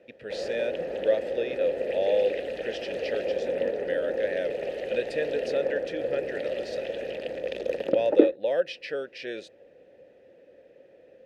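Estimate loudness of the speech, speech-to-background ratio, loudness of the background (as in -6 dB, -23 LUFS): -31.0 LUFS, -0.5 dB, -30.5 LUFS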